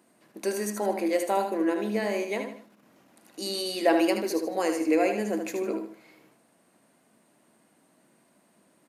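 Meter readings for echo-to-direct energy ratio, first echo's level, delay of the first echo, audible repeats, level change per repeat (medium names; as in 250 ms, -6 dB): -6.5 dB, -7.0 dB, 77 ms, 3, -9.0 dB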